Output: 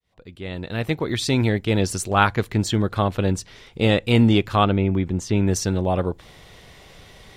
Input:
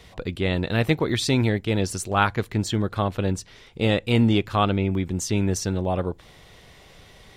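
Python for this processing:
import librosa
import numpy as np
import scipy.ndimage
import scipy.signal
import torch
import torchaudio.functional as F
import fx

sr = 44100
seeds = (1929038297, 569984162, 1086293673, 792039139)

y = fx.fade_in_head(x, sr, length_s=1.74)
y = fx.lowpass(y, sr, hz=2400.0, slope=6, at=(4.64, 5.47))
y = y * 10.0 ** (3.0 / 20.0)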